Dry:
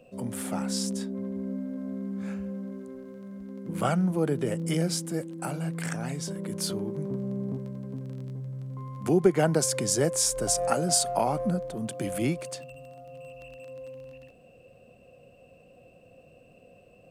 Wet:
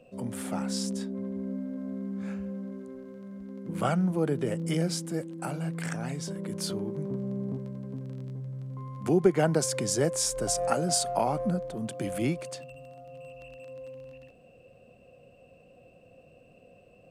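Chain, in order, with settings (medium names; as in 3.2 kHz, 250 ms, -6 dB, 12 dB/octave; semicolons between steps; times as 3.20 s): treble shelf 9.2 kHz -6.5 dB; trim -1 dB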